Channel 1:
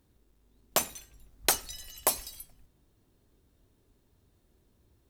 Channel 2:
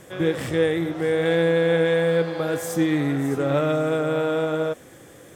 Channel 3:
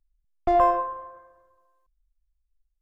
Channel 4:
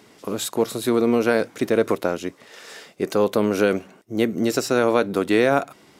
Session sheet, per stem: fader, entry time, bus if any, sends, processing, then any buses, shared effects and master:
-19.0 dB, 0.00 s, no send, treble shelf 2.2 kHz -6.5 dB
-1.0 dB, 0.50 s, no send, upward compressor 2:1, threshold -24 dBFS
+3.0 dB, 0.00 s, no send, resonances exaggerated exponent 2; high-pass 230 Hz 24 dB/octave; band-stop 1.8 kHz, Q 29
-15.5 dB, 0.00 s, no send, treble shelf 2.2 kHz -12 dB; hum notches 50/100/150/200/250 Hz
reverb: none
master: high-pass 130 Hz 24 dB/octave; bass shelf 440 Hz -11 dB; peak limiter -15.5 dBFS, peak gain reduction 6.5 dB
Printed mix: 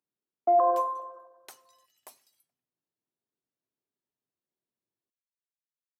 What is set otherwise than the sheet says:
stem 2: muted; stem 4: muted

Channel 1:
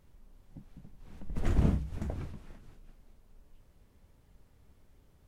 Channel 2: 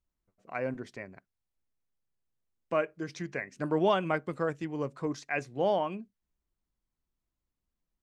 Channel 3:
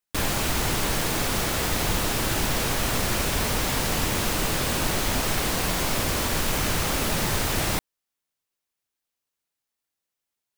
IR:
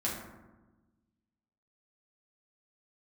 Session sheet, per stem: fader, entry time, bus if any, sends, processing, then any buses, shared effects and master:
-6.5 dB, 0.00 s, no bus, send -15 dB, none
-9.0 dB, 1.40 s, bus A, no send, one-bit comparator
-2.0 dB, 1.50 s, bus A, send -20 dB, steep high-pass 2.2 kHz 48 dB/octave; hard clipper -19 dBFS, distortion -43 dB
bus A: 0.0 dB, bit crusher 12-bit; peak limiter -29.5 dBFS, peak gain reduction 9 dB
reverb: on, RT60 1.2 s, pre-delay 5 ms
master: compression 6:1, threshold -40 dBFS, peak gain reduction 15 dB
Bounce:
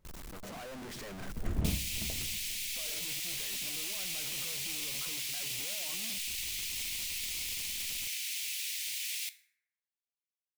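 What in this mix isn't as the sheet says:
stem 1: send -15 dB -> -21 dB; stem 2: entry 1.40 s -> 0.05 s; master: missing compression 6:1, threshold -40 dBFS, peak gain reduction 15 dB

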